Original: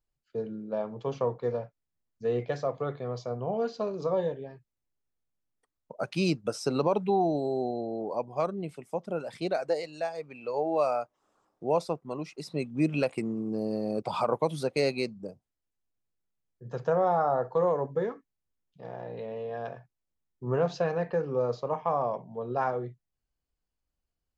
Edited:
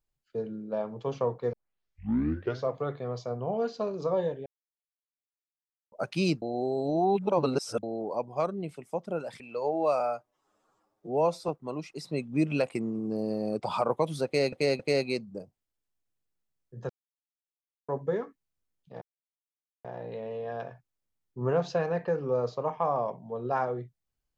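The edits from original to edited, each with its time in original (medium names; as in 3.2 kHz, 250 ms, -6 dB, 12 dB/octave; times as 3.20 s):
1.53 s: tape start 1.18 s
4.46–5.92 s: mute
6.42–7.83 s: reverse
9.40–10.32 s: delete
10.92–11.91 s: stretch 1.5×
14.68–14.95 s: loop, 3 plays
16.78–17.77 s: mute
18.90 s: insert silence 0.83 s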